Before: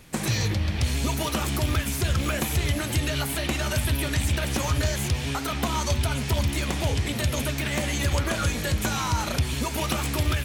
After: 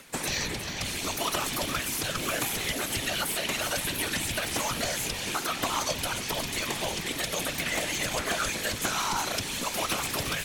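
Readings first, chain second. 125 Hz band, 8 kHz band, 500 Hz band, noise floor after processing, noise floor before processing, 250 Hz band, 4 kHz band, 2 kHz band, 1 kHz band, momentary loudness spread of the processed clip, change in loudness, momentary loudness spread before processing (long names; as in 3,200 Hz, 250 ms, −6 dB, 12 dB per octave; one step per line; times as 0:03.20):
−15.0 dB, +1.0 dB, −3.0 dB, −35 dBFS, −30 dBFS, −7.5 dB, +0.5 dB, 0.0 dB, −0.5 dB, 2 LU, −3.0 dB, 2 LU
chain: high-pass filter 210 Hz 6 dB per octave
low-shelf EQ 340 Hz −7.5 dB
upward compression, threshold −47 dBFS
random phases in short frames
on a send: delay with a high-pass on its return 359 ms, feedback 70%, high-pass 3,800 Hz, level −7.5 dB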